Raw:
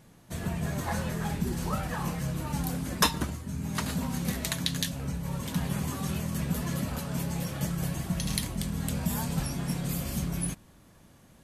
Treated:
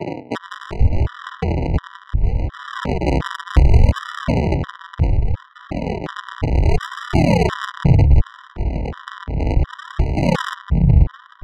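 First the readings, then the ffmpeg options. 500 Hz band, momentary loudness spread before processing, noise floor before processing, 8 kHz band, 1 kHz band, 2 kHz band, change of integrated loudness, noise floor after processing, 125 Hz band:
+15.0 dB, 4 LU, -56 dBFS, n/a, +10.5 dB, +9.5 dB, +11.5 dB, -45 dBFS, +14.0 dB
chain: -filter_complex "[0:a]lowpass=1.5k,areverse,acompressor=threshold=-43dB:ratio=8,areverse,aphaser=in_gain=1:out_gain=1:delay=1.6:decay=0.72:speed=0.28:type=sinusoidal,aresample=8000,acrusher=samples=30:mix=1:aa=0.000001:lfo=1:lforange=30:lforate=0.67,aresample=44100,adynamicsmooth=sensitivity=8:basefreq=1.1k,tremolo=f=0.65:d=0.71,acrossover=split=180[a][b];[a]adelay=490[c];[c][b]amix=inputs=2:normalize=0,alimiter=level_in=31.5dB:limit=-1dB:release=50:level=0:latency=1,afftfilt=real='re*gt(sin(2*PI*1.4*pts/sr)*(1-2*mod(floor(b*sr/1024/980),2)),0)':imag='im*gt(sin(2*PI*1.4*pts/sr)*(1-2*mod(floor(b*sr/1024/980),2)),0)':win_size=1024:overlap=0.75,volume=-1dB"

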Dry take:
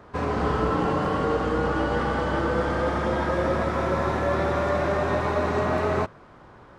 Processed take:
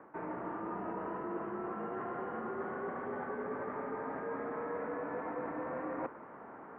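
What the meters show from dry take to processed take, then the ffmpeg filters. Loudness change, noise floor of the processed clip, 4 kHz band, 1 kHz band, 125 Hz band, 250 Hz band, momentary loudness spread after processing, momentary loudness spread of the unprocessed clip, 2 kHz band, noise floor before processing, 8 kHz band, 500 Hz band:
-15.0 dB, -51 dBFS, under -30 dB, -14.0 dB, -24.5 dB, -14.0 dB, 2 LU, 1 LU, -16.0 dB, -49 dBFS, n/a, -14.5 dB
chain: -af "areverse,acompressor=threshold=-37dB:ratio=6,areverse,highpass=f=320:t=q:w=0.5412,highpass=f=320:t=q:w=1.307,lowpass=f=2.2k:t=q:w=0.5176,lowpass=f=2.2k:t=q:w=0.7071,lowpass=f=2.2k:t=q:w=1.932,afreqshift=-110,volume=1dB"

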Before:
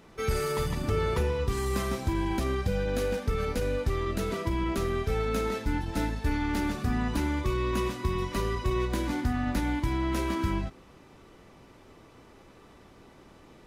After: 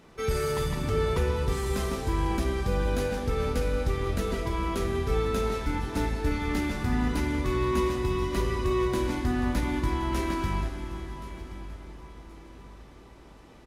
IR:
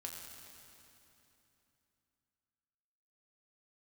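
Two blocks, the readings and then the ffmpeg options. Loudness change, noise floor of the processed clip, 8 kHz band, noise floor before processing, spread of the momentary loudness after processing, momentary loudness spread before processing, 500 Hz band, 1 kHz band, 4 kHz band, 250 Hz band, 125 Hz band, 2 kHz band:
+1.0 dB, -50 dBFS, +1.0 dB, -54 dBFS, 14 LU, 2 LU, +1.5 dB, +1.5 dB, +1.0 dB, +0.5 dB, +1.0 dB, +0.5 dB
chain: -filter_complex "[0:a]aecho=1:1:1075|2150|3225:0.141|0.0466|0.0154,asplit=2[a][b];[1:a]atrim=start_sample=2205,asetrate=26019,aresample=44100[c];[b][c]afir=irnorm=-1:irlink=0,volume=0dB[d];[a][d]amix=inputs=2:normalize=0,volume=-5dB"

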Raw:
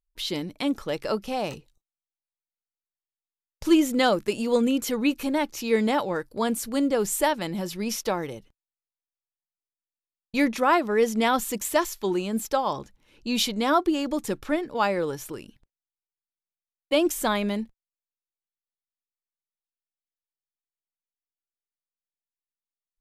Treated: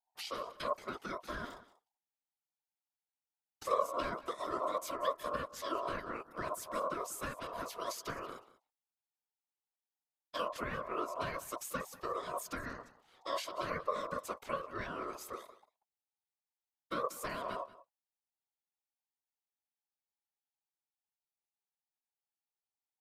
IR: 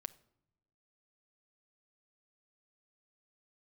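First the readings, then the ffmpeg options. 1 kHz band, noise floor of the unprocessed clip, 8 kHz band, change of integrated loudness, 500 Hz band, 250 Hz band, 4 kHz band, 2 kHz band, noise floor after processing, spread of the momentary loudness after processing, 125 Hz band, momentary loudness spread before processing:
-10.0 dB, under -85 dBFS, -14.5 dB, -14.0 dB, -14.0 dB, -23.0 dB, -16.0 dB, -13.0 dB, under -85 dBFS, 9 LU, -13.0 dB, 9 LU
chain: -filter_complex "[0:a]acrossover=split=200|490|3400[a][b][c][d];[a]acompressor=threshold=-53dB:ratio=6[e];[e][b][c][d]amix=inputs=4:normalize=0,afftfilt=real='hypot(re,im)*cos(2*PI*random(0))':imag='hypot(re,im)*sin(2*PI*random(1))':win_size=512:overlap=0.75,acrossover=split=280[f][g];[g]acompressor=threshold=-41dB:ratio=5[h];[f][h]amix=inputs=2:normalize=0,aecho=1:1:186:0.126,aeval=exprs='val(0)*sin(2*PI*830*n/s)':c=same,volume=2dB"

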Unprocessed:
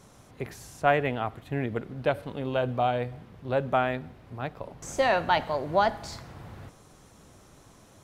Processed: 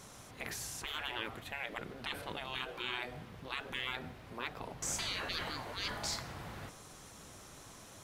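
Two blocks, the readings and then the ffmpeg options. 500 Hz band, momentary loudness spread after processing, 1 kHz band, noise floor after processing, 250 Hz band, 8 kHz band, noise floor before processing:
-19.5 dB, 16 LU, -16.5 dB, -54 dBFS, -14.0 dB, +4.5 dB, -55 dBFS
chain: -af "tiltshelf=f=940:g=-4,afftfilt=real='re*lt(hypot(re,im),0.0501)':imag='im*lt(hypot(re,im),0.0501)':win_size=1024:overlap=0.75,volume=1.5dB"

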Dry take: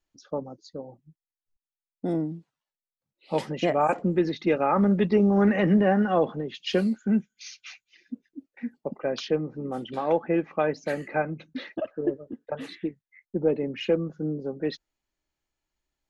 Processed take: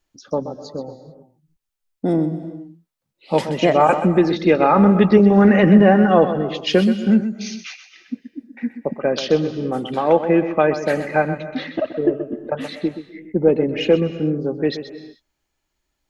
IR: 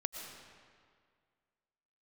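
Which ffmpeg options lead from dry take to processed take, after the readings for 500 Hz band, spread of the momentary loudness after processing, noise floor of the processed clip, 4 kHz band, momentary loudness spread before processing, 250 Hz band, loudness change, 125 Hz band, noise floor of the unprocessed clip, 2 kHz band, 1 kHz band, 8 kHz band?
+9.0 dB, 19 LU, -76 dBFS, +9.0 dB, 20 LU, +9.0 dB, +9.0 dB, +9.0 dB, under -85 dBFS, +9.0 dB, +9.0 dB, n/a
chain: -filter_complex "[0:a]asplit=2[a][b];[1:a]atrim=start_sample=2205,afade=t=out:st=0.37:d=0.01,atrim=end_sample=16758,adelay=127[c];[b][c]afir=irnorm=-1:irlink=0,volume=-10dB[d];[a][d]amix=inputs=2:normalize=0,volume=8.5dB"

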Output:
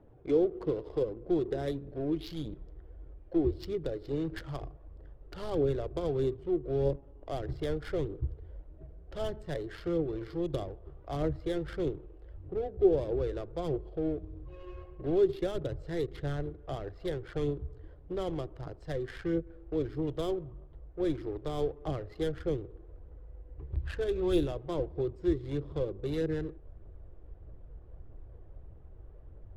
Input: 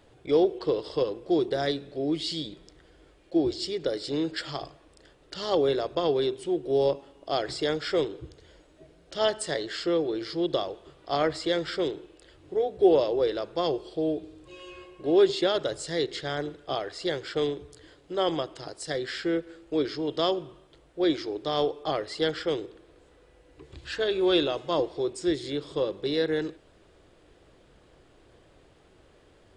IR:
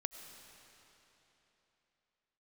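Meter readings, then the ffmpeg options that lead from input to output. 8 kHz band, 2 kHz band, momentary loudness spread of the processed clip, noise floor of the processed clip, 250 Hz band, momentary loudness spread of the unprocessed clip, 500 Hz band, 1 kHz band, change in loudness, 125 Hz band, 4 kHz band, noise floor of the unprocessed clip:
under -15 dB, -11.5 dB, 22 LU, -52 dBFS, -4.0 dB, 13 LU, -6.0 dB, -11.0 dB, -5.5 dB, +4.5 dB, -17.0 dB, -59 dBFS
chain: -filter_complex "[0:a]adynamicsmooth=sensitivity=3.5:basefreq=780,aphaser=in_gain=1:out_gain=1:delay=2.9:decay=0.29:speed=1.6:type=triangular,acrossover=split=430[a][b];[b]acompressor=threshold=-44dB:ratio=3[c];[a][c]amix=inputs=2:normalize=0,asubboost=boost=5.5:cutoff=98"

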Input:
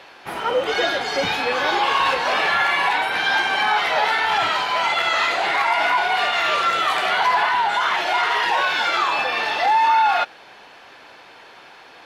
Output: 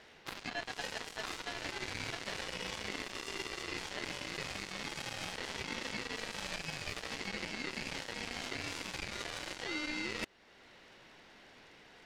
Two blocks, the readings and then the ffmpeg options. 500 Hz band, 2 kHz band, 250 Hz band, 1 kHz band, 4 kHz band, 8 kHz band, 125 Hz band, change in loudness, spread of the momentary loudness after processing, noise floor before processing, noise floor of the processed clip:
-20.5 dB, -21.0 dB, -8.5 dB, -29.0 dB, -17.5 dB, -7.5 dB, n/a, -21.0 dB, 18 LU, -45 dBFS, -59 dBFS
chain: -af "lowshelf=f=310:g=11.5,areverse,acompressor=threshold=-28dB:ratio=5,areverse,aeval=exprs='val(0)*sin(2*PI*1200*n/s)':c=same,aeval=exprs='0.141*(cos(1*acos(clip(val(0)/0.141,-1,1)))-cos(1*PI/2))+0.02*(cos(2*acos(clip(val(0)/0.141,-1,1)))-cos(2*PI/2))+0.0251*(cos(7*acos(clip(val(0)/0.141,-1,1)))-cos(7*PI/2))':c=same,alimiter=level_in=2.5dB:limit=-24dB:level=0:latency=1:release=471,volume=-2.5dB,volume=2dB"

